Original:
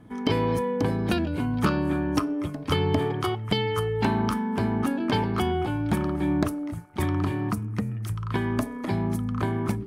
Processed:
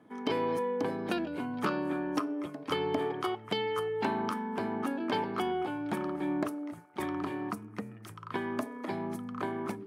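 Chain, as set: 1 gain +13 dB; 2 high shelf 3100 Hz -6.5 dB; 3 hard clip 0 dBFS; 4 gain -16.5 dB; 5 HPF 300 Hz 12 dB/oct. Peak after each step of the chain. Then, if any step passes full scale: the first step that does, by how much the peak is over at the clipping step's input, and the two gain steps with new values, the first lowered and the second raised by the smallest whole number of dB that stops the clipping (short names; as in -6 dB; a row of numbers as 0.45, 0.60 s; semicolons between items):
+4.0, +3.0, 0.0, -16.5, -15.0 dBFS; step 1, 3.0 dB; step 1 +10 dB, step 4 -13.5 dB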